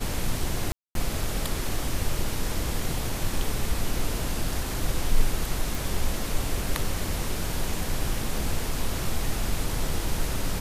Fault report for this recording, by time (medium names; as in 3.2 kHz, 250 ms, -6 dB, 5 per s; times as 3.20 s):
0.72–0.95 s: dropout 232 ms
5.75 s: pop